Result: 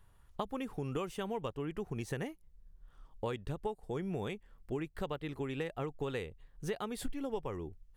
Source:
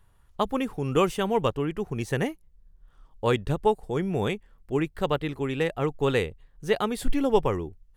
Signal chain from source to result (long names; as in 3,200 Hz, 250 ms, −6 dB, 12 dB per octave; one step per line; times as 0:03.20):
downward compressor 6 to 1, threshold −32 dBFS, peak gain reduction 16 dB
level −2.5 dB